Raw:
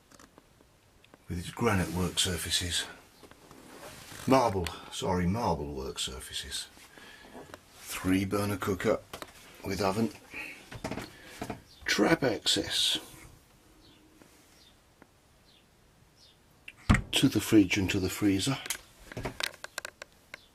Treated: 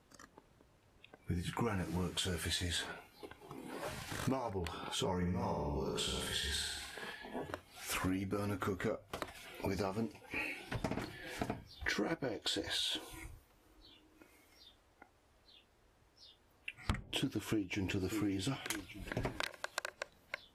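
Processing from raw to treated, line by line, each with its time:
5.16–7.13 s: flutter echo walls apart 9.6 m, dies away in 0.88 s
12.38–16.76 s: peaking EQ 160 Hz -11.5 dB
17.35–17.91 s: echo throw 590 ms, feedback 30%, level -15.5 dB
whole clip: treble shelf 2.7 kHz -7 dB; spectral noise reduction 10 dB; compression 10:1, threshold -39 dBFS; trim +5 dB

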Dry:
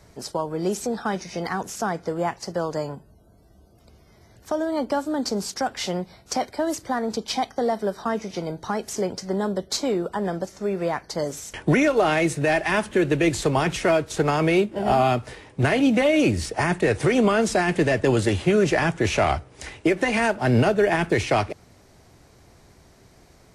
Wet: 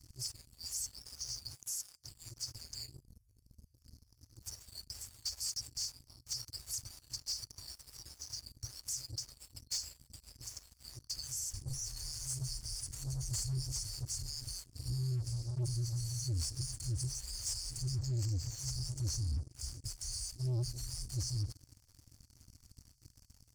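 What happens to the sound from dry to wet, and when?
1.54–2.04 s: pre-emphasis filter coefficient 0.8
15.14–15.80 s: reverb throw, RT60 1.9 s, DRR 4 dB
17.99–18.59 s: steep low-pass 8.1 kHz 96 dB/octave
whole clip: FFT band-reject 130–4300 Hz; waveshaping leveller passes 3; peak limiter -23.5 dBFS; trim -7.5 dB

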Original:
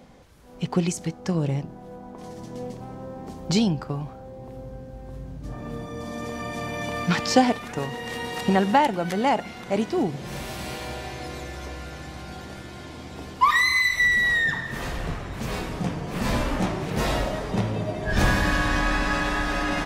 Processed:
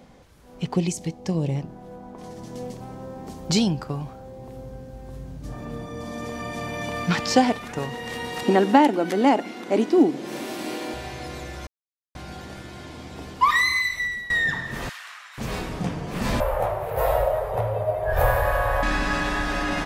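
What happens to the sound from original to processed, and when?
0.74–1.56 s: peaking EQ 1.4 kHz -12.5 dB 0.54 oct
2.46–5.65 s: treble shelf 4.2 kHz +6 dB
8.43–10.94 s: resonant high-pass 290 Hz, resonance Q 3.4
11.67–12.15 s: mute
13.62–14.30 s: fade out, to -18.5 dB
14.89–15.38 s: high-pass 1.2 kHz 24 dB/octave
16.40–18.83 s: FFT filter 110 Hz 0 dB, 250 Hz -30 dB, 520 Hz +10 dB, 780 Hz +6 dB, 3.6 kHz -12 dB, 5.9 kHz -17 dB, 8.8 kHz -7 dB, 13 kHz +11 dB

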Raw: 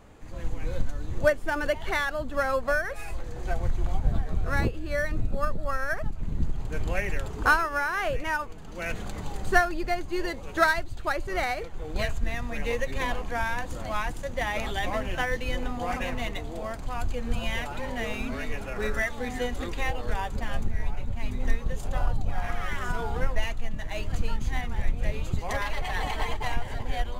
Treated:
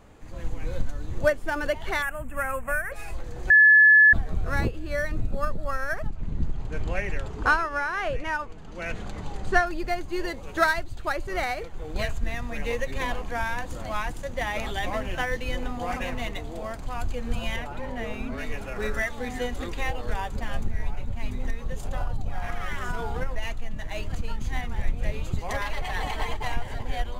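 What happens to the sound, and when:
2.02–2.92 s: FFT filter 190 Hz 0 dB, 350 Hz -9 dB, 1.3 kHz -1 dB, 2.6 kHz +3 dB, 4.3 kHz -30 dB, 8.2 kHz +8 dB
3.50–4.13 s: bleep 1.72 kHz -11 dBFS
6.07–9.67 s: distance through air 54 m
17.56–18.38 s: treble shelf 2.3 kHz -8.5 dB
21.31–24.51 s: compression 3:1, threshold -22 dBFS

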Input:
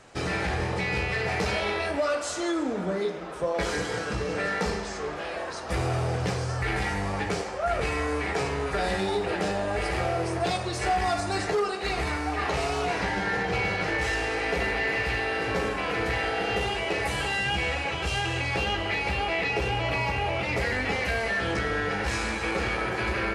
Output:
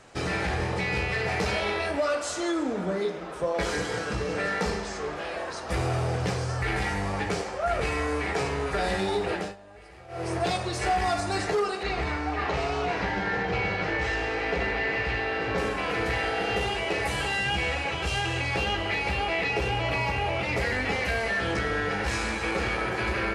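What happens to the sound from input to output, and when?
9.32–10.32 s: dip -21 dB, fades 0.24 s
11.83–15.58 s: distance through air 98 m

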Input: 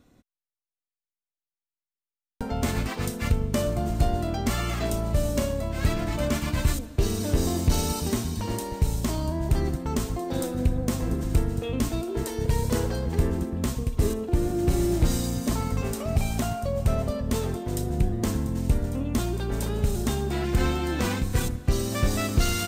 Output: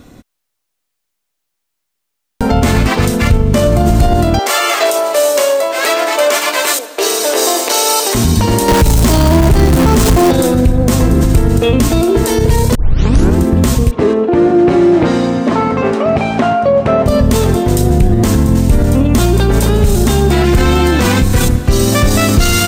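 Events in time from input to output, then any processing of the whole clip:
2.54–3.76 s: treble shelf 6.1 kHz -5 dB
4.39–8.15 s: inverse Chebyshev high-pass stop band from 170 Hz, stop band 50 dB
8.68–10.31 s: jump at every zero crossing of -28.5 dBFS
12.75 s: tape start 0.61 s
13.91–17.06 s: band-pass 260–2200 Hz
whole clip: loudness maximiser +21.5 dB; trim -1 dB

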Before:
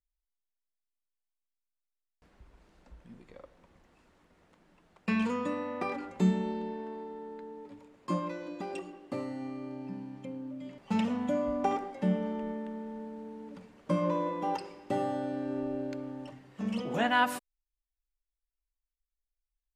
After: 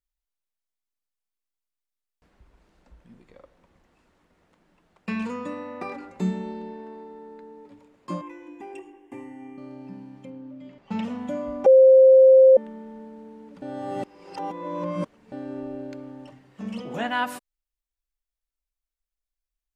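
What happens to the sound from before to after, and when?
5.12–7.66 s: band-stop 3.2 kHz
8.21–9.58 s: static phaser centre 870 Hz, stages 8
10.30–11.03 s: distance through air 88 m
11.66–12.57 s: bleep 526 Hz -9 dBFS
13.62–15.32 s: reverse

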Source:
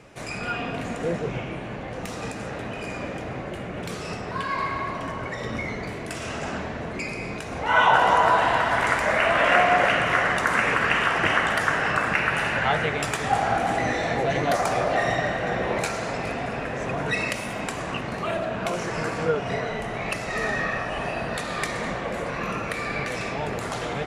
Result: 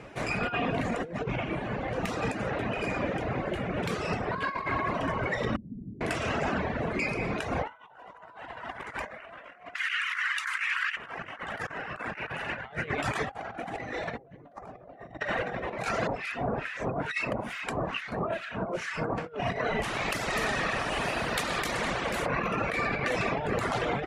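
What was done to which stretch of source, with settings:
5.56–6.01 s: four-pole ladder low-pass 270 Hz, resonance 50%
9.74–10.97 s: Bessel high-pass 2.2 kHz, order 8
14.18–15.20 s: tilt shelf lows +9 dB, about 1.2 kHz
16.07–19.18 s: harmonic tremolo 2.3 Hz, depth 100%, crossover 1.3 kHz
19.83–22.26 s: spectrum-flattening compressor 2:1
whole clip: reverb removal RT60 0.86 s; tone controls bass -1 dB, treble -9 dB; compressor with a negative ratio -32 dBFS, ratio -0.5

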